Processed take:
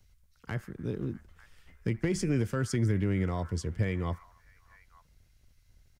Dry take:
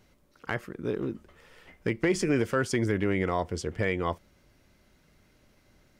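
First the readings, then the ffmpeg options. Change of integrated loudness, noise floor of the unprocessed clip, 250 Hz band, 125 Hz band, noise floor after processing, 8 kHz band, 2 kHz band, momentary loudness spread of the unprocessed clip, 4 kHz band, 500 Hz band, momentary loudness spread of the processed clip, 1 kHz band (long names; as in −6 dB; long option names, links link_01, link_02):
−2.5 dB, −64 dBFS, −2.5 dB, +3.5 dB, −65 dBFS, −2.5 dB, −8.5 dB, 10 LU, −5.0 dB, −7.0 dB, 11 LU, −8.5 dB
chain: -filter_complex "[0:a]bass=frequency=250:gain=14,treble=frequency=4000:gain=7,acrossover=split=110|1300|1600[link_01][link_02][link_03][link_04];[link_02]aeval=exprs='sgn(val(0))*max(abs(val(0))-0.00158,0)':channel_layout=same[link_05];[link_03]aecho=1:1:80|143|288|564|646|897:0.447|0.473|0.224|0.133|0.266|0.473[link_06];[link_01][link_05][link_06][link_04]amix=inputs=4:normalize=0,volume=-9dB"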